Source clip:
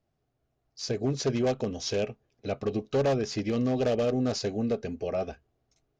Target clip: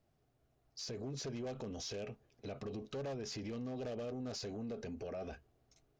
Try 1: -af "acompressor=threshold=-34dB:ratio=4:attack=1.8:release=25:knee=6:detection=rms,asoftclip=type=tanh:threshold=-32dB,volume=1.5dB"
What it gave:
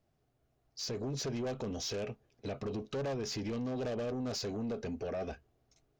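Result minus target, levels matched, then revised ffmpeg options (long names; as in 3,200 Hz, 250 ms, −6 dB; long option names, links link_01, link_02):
downward compressor: peak gain reduction −7.5 dB
-af "acompressor=threshold=-44dB:ratio=4:attack=1.8:release=25:knee=6:detection=rms,asoftclip=type=tanh:threshold=-32dB,volume=1.5dB"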